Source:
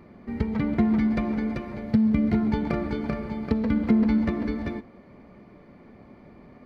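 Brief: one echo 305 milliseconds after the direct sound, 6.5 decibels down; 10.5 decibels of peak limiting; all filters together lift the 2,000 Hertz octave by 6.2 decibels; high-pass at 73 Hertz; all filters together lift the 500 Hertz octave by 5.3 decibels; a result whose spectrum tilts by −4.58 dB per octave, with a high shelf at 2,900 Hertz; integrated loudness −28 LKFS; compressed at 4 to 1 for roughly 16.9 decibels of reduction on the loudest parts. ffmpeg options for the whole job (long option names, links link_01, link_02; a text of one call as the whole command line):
ffmpeg -i in.wav -af "highpass=73,equalizer=frequency=500:width_type=o:gain=6.5,equalizer=frequency=2000:width_type=o:gain=5.5,highshelf=frequency=2900:gain=4,acompressor=threshold=-37dB:ratio=4,alimiter=level_in=7.5dB:limit=-24dB:level=0:latency=1,volume=-7.5dB,aecho=1:1:305:0.473,volume=13dB" out.wav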